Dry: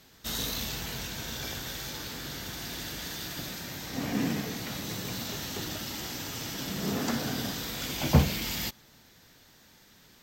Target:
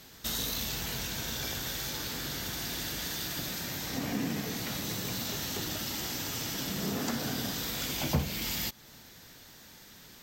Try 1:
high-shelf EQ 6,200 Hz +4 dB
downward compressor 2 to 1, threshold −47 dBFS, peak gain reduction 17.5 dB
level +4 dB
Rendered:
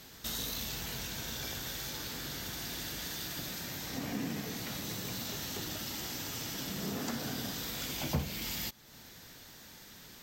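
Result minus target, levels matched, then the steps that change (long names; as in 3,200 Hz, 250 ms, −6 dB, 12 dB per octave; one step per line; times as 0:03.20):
downward compressor: peak gain reduction +4 dB
change: downward compressor 2 to 1, threshold −39 dBFS, peak gain reduction 13.5 dB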